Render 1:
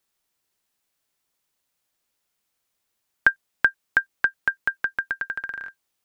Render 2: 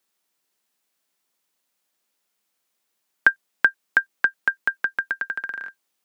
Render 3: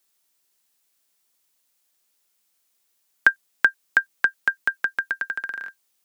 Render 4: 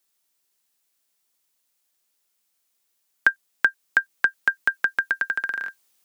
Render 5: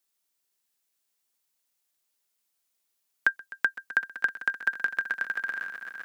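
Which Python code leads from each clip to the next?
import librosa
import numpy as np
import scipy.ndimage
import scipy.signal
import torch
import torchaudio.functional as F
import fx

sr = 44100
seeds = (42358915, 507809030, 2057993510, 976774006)

y1 = scipy.signal.sosfilt(scipy.signal.butter(4, 160.0, 'highpass', fs=sr, output='sos'), x)
y1 = y1 * librosa.db_to_amplitude(1.5)
y2 = fx.high_shelf(y1, sr, hz=3600.0, db=8.5)
y2 = y2 * librosa.db_to_amplitude(-1.5)
y3 = fx.rider(y2, sr, range_db=10, speed_s=2.0)
y4 = fx.echo_swell(y3, sr, ms=128, loudest=5, wet_db=-16.5)
y4 = y4 * librosa.db_to_amplitude(-5.5)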